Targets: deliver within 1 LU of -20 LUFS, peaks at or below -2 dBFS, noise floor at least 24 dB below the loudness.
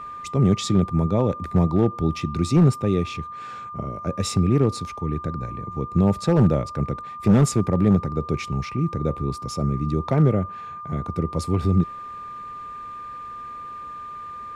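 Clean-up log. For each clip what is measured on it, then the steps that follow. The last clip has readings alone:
clipped 0.8%; flat tops at -10.0 dBFS; steady tone 1200 Hz; tone level -33 dBFS; loudness -22.5 LUFS; peak -10.0 dBFS; loudness target -20.0 LUFS
-> clip repair -10 dBFS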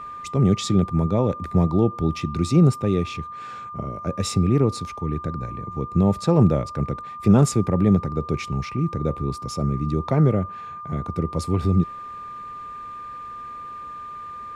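clipped 0.0%; steady tone 1200 Hz; tone level -33 dBFS
-> notch 1200 Hz, Q 30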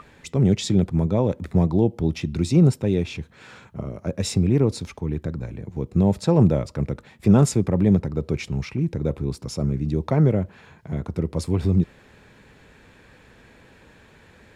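steady tone none; loudness -22.5 LUFS; peak -5.0 dBFS; loudness target -20.0 LUFS
-> gain +2.5 dB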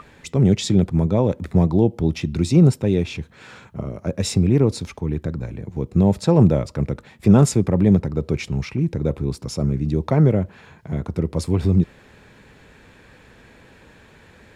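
loudness -20.0 LUFS; peak -2.5 dBFS; noise floor -50 dBFS

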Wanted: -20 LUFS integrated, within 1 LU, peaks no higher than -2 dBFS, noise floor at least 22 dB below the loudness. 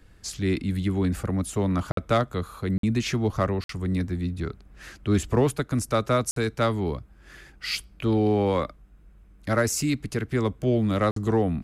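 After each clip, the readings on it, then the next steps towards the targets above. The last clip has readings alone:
dropouts 5; longest dropout 53 ms; loudness -26.0 LUFS; peak -10.5 dBFS; loudness target -20.0 LUFS
-> interpolate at 1.92/2.78/3.64/6.31/11.11, 53 ms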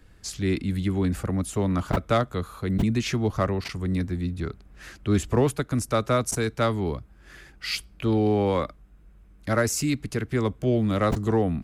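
dropouts 0; loudness -26.0 LUFS; peak -10.5 dBFS; loudness target -20.0 LUFS
-> gain +6 dB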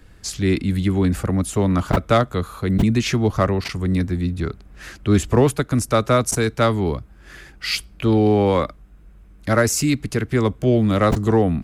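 loudness -20.0 LUFS; peak -4.5 dBFS; noise floor -47 dBFS

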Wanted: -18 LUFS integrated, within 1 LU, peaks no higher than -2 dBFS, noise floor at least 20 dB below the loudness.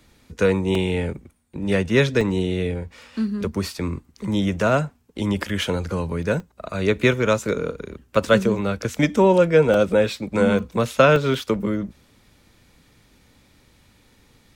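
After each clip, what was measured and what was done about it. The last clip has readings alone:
dropouts 8; longest dropout 2.1 ms; loudness -21.5 LUFS; peak -2.0 dBFS; loudness target -18.0 LUFS
-> interpolate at 0.75/2.21/6.4/7.43/8.99/9.74/10.59/11.16, 2.1 ms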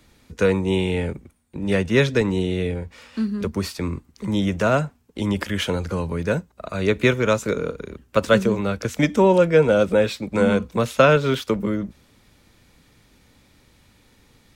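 dropouts 0; loudness -21.5 LUFS; peak -2.0 dBFS; loudness target -18.0 LUFS
-> gain +3.5 dB; limiter -2 dBFS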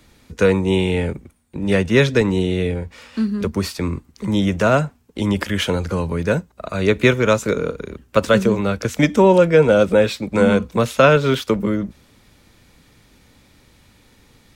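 loudness -18.0 LUFS; peak -2.0 dBFS; noise floor -54 dBFS

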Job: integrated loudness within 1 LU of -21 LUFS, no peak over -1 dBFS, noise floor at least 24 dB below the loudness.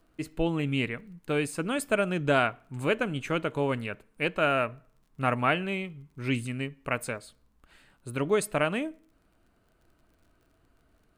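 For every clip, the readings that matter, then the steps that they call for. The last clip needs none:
ticks 26/s; loudness -29.5 LUFS; peak -10.0 dBFS; loudness target -21.0 LUFS
-> de-click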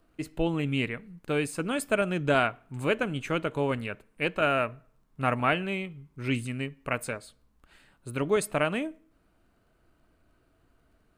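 ticks 0/s; loudness -29.5 LUFS; peak -10.0 dBFS; loudness target -21.0 LUFS
-> gain +8.5 dB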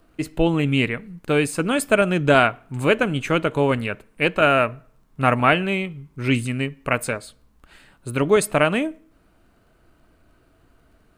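loudness -21.0 LUFS; peak -1.5 dBFS; noise floor -59 dBFS

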